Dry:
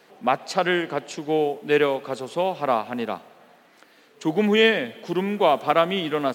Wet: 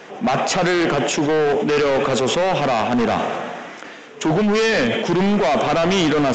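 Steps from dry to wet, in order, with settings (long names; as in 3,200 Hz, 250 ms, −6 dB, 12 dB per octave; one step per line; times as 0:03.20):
parametric band 4,300 Hz −12 dB 0.29 octaves
in parallel at +1.5 dB: compressor whose output falls as the input rises −25 dBFS, ratio −0.5
on the sum: gain into a clipping stage and back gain 21 dB
downsampling to 16,000 Hz
level that may fall only so fast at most 29 dB per second
level +6 dB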